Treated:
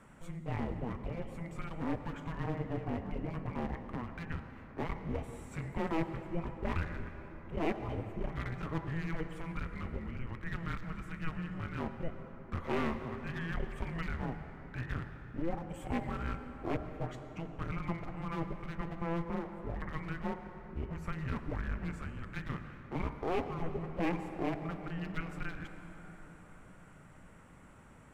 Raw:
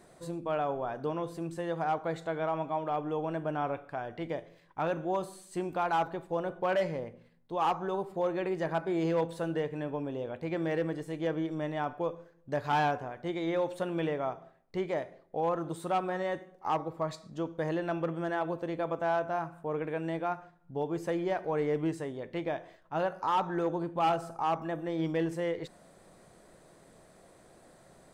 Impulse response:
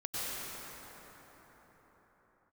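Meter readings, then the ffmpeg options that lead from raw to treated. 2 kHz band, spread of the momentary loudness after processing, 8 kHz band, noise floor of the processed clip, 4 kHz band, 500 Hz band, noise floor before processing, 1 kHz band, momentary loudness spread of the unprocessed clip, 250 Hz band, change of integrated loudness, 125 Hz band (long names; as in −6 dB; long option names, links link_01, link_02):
−3.5 dB, 10 LU, can't be measured, −55 dBFS, −7.0 dB, −10.5 dB, −60 dBFS, −10.5 dB, 8 LU, −3.5 dB, −6.5 dB, +1.5 dB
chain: -filter_complex "[0:a]highpass=410,highshelf=frequency=3500:width_type=q:width=3:gain=-8,asplit=2[link_01][link_02];[link_02]acompressor=threshold=-43dB:ratio=6,volume=0.5dB[link_03];[link_01][link_03]amix=inputs=2:normalize=0,afreqshift=-500,aeval=exprs='clip(val(0),-1,0.015)':channel_layout=same,asplit=2[link_04][link_05];[1:a]atrim=start_sample=2205[link_06];[link_05][link_06]afir=irnorm=-1:irlink=0,volume=-13dB[link_07];[link_04][link_07]amix=inputs=2:normalize=0,volume=-4.5dB"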